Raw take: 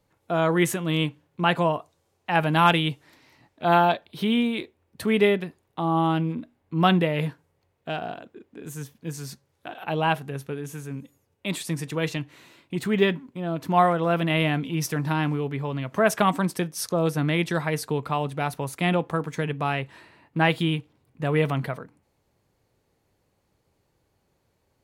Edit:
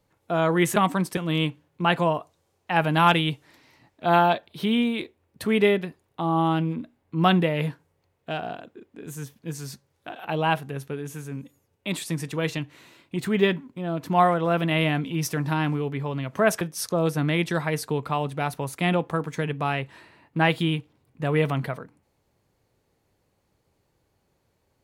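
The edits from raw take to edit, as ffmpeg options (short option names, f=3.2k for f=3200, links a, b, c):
-filter_complex "[0:a]asplit=4[a][b][c][d];[a]atrim=end=0.762[e];[b]atrim=start=16.198:end=16.612[f];[c]atrim=start=0.758:end=16.202[g];[d]atrim=start=16.608[h];[e][f]acrossfade=d=0.004:c1=hsin:c2=hsin[i];[i][g]acrossfade=d=0.004:c1=hsin:c2=hsin[j];[j][h]acrossfade=d=0.004:c1=hsin:c2=hsin"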